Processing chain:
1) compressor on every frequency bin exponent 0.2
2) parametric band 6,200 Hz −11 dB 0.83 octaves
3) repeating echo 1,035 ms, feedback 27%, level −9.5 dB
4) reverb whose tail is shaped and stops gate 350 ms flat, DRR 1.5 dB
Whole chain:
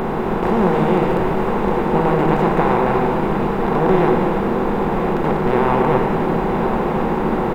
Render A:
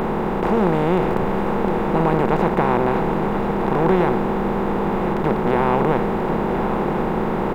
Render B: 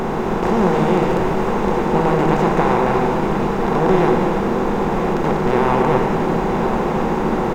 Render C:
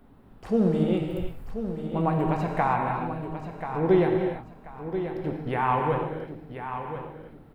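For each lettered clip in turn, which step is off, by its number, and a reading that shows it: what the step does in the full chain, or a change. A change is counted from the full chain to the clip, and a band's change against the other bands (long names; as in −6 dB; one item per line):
4, echo-to-direct ratio −0.5 dB to −9.0 dB
2, 4 kHz band +2.5 dB
1, 125 Hz band +2.5 dB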